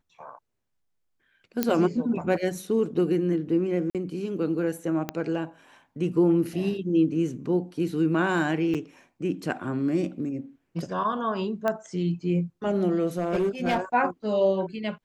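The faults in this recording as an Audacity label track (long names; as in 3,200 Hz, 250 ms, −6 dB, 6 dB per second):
1.630000	1.630000	click −8 dBFS
3.900000	3.950000	drop-out 47 ms
5.090000	5.090000	click −14 dBFS
8.740000	8.750000	drop-out 6.9 ms
11.680000	11.680000	click −14 dBFS
13.180000	13.800000	clipping −20 dBFS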